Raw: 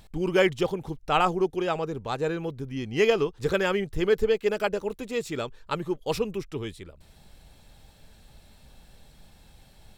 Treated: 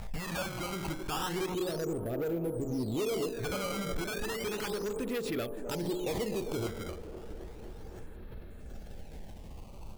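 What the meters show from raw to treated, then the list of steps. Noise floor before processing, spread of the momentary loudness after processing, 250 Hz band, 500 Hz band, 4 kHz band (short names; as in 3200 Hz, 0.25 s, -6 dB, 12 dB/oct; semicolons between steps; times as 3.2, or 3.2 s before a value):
-55 dBFS, 16 LU, -4.5 dB, -9.0 dB, -5.0 dB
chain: spectral gain 1.46–4.27, 700–6500 Hz -18 dB; de-hum 45.08 Hz, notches 26; low-pass opened by the level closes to 1300 Hz, open at -20.5 dBFS; bell 140 Hz -8.5 dB 0.25 oct; compressor 2:1, threshold -41 dBFS, peak gain reduction 13.5 dB; decimation with a swept rate 14×, swing 160% 0.33 Hz; hard clip -37 dBFS, distortion -8 dB; LFO notch saw up 0.3 Hz 310–1900 Hz; on a send: band-limited delay 0.257 s, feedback 75%, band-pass 470 Hz, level -11 dB; on the sum: backwards sustainer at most 56 dB/s; gain +7.5 dB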